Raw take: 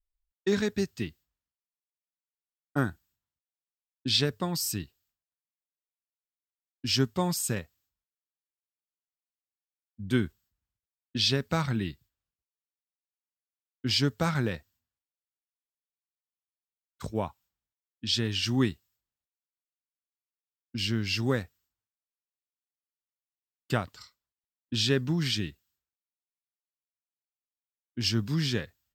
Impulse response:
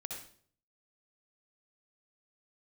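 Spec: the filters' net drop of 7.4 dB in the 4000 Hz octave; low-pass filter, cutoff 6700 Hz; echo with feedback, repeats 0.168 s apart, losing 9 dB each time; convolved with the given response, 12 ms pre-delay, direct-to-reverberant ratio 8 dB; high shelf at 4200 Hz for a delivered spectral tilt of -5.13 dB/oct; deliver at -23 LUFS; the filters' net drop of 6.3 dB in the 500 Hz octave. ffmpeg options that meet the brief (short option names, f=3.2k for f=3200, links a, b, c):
-filter_complex "[0:a]lowpass=6.7k,equalizer=f=500:t=o:g=-8.5,equalizer=f=4k:t=o:g=-7,highshelf=f=4.2k:g=-3.5,aecho=1:1:168|336|504|672:0.355|0.124|0.0435|0.0152,asplit=2[a][b];[1:a]atrim=start_sample=2205,adelay=12[c];[b][c]afir=irnorm=-1:irlink=0,volume=-7dB[d];[a][d]amix=inputs=2:normalize=0,volume=9dB"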